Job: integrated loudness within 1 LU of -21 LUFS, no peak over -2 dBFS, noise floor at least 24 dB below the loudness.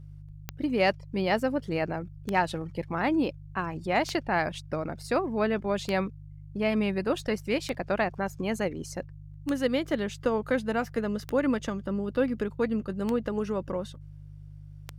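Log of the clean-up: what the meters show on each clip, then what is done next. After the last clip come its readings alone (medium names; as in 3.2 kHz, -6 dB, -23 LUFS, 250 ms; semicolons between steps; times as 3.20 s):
clicks found 9; hum 50 Hz; highest harmonic 150 Hz; hum level -43 dBFS; loudness -29.5 LUFS; peak level -11.0 dBFS; loudness target -21.0 LUFS
-> de-click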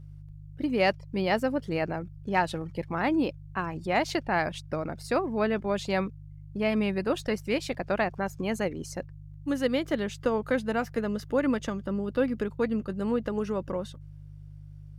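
clicks found 0; hum 50 Hz; highest harmonic 150 Hz; hum level -43 dBFS
-> de-hum 50 Hz, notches 3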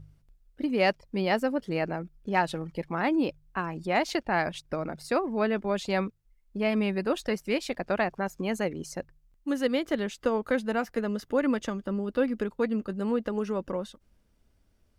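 hum not found; loudness -29.5 LUFS; peak level -11.0 dBFS; loudness target -21.0 LUFS
-> trim +8.5 dB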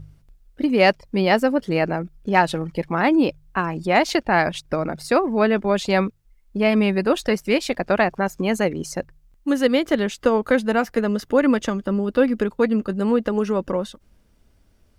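loudness -21.0 LUFS; peak level -2.5 dBFS; noise floor -58 dBFS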